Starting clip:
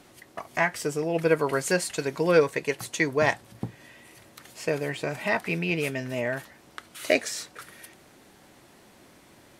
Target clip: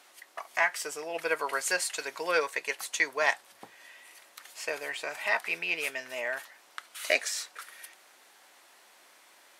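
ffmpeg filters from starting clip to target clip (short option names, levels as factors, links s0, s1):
-af "highpass=830"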